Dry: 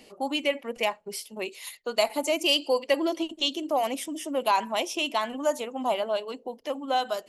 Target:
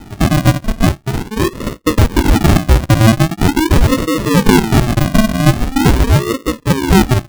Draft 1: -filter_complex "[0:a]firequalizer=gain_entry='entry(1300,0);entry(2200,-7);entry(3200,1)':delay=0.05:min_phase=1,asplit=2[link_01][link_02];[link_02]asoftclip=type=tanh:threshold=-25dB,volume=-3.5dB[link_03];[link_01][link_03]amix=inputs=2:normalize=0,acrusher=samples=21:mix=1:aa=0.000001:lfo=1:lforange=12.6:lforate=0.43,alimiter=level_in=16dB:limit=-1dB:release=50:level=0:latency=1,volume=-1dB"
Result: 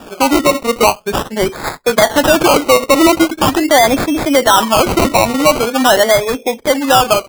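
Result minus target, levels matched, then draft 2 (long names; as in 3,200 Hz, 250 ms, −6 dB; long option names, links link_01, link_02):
sample-and-hold swept by an LFO: distortion −39 dB
-filter_complex "[0:a]firequalizer=gain_entry='entry(1300,0);entry(2200,-7);entry(3200,1)':delay=0.05:min_phase=1,asplit=2[link_01][link_02];[link_02]asoftclip=type=tanh:threshold=-25dB,volume=-3.5dB[link_03];[link_01][link_03]amix=inputs=2:normalize=0,acrusher=samples=78:mix=1:aa=0.000001:lfo=1:lforange=46.8:lforate=0.43,alimiter=level_in=16dB:limit=-1dB:release=50:level=0:latency=1,volume=-1dB"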